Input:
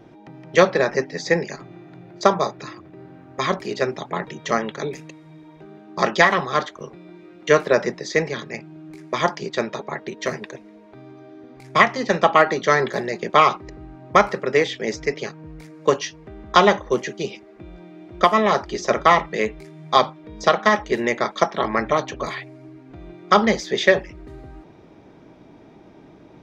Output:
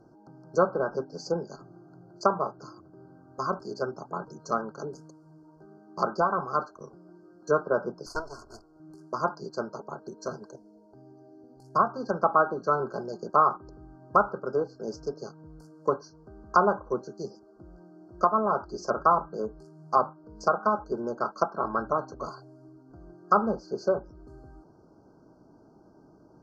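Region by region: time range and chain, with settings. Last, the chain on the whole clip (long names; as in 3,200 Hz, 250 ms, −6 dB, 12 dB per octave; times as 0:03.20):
0:08.06–0:08.80: lower of the sound and its delayed copy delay 2.9 ms + parametric band 290 Hz −7 dB 1.5 octaves
0:10.50–0:11.75: flat-topped bell 1,700 Hz −9 dB 1.1 octaves + notch filter 1,100 Hz, Q 5.4
whole clip: brick-wall band-stop 1,600–4,200 Hz; treble cut that deepens with the level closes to 1,500 Hz, closed at −15 dBFS; dynamic equaliser 1,400 Hz, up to +6 dB, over −31 dBFS, Q 1.3; level −9 dB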